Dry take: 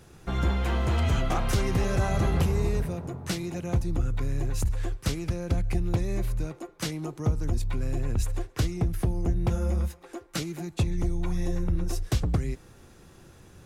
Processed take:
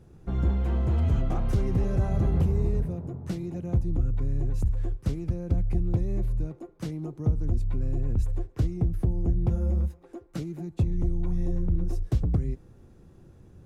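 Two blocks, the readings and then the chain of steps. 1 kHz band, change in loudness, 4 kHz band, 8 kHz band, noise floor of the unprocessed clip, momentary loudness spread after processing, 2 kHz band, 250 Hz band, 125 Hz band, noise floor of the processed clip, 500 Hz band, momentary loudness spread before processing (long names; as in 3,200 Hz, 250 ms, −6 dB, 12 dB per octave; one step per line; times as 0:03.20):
−8.0 dB, +0.5 dB, below −10 dB, below −15 dB, −53 dBFS, 9 LU, below −10 dB, 0.0 dB, +1.0 dB, −53 dBFS, −3.0 dB, 8 LU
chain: tilt shelving filter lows +8.5 dB, about 760 Hz
level −7 dB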